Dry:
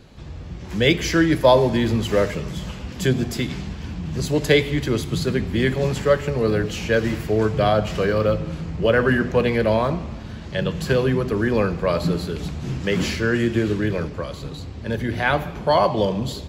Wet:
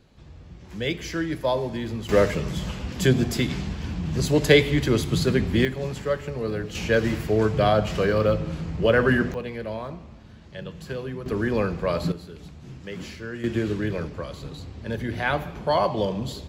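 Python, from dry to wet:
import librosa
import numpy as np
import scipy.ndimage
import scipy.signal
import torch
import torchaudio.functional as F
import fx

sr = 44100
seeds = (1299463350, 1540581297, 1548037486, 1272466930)

y = fx.gain(x, sr, db=fx.steps((0.0, -10.0), (2.09, 0.5), (5.65, -8.0), (6.75, -1.5), (9.34, -13.0), (11.26, -4.0), (12.12, -14.0), (13.44, -4.5)))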